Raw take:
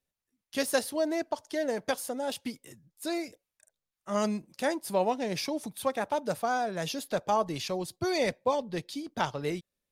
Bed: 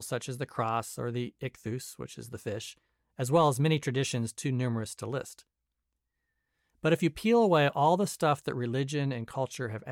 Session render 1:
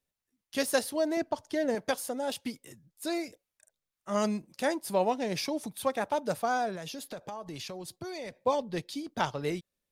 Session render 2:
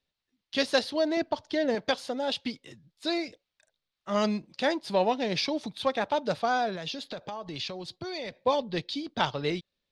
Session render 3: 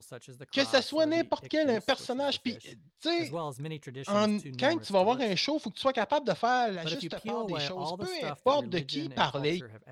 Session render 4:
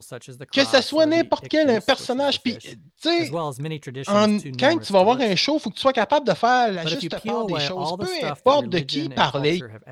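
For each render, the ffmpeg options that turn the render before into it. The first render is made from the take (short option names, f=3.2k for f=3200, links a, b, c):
-filter_complex "[0:a]asettb=1/sr,asplit=3[a][b][c];[a]atrim=end=1.174[d];[b]atrim=start=1.17:end=1.75,asetpts=PTS-STARTPTS,afade=t=in:d=0.004:c=qsin,afade=t=out:st=0.576:d=0.004:c=qsin,bass=f=250:g=9,treble=f=4k:g=-3[e];[c]atrim=start=1.746[f];[d][e]acrossfade=d=0.004:c1=hsin:c2=qsin[g];[g][f]acrossfade=d=0.004:c1=qsin:c2=hsin,asettb=1/sr,asplit=3[h][i][j];[h]atrim=end=6.754[k];[i]atrim=start=6.75:end=8.44,asetpts=PTS-STARTPTS,afade=t=in:d=0.004:c=qsin,afade=t=out:st=1.686:d=0.004:c=qsin,acompressor=threshold=-36dB:ratio=8:attack=3.2:release=140:knee=1:detection=peak[l];[j]atrim=start=8.436[m];[k][l]acrossfade=d=0.004:c1=hsin:c2=qsin[n];[n][m]acrossfade=d=0.004:c1=qsin:c2=hsin"
-filter_complex "[0:a]lowpass=f=4k:t=q:w=2.3,asplit=2[a][b];[b]asoftclip=type=tanh:threshold=-20.5dB,volume=-10.5dB[c];[a][c]amix=inputs=2:normalize=0"
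-filter_complex "[1:a]volume=-12dB[a];[0:a][a]amix=inputs=2:normalize=0"
-af "volume=9dB,alimiter=limit=-3dB:level=0:latency=1"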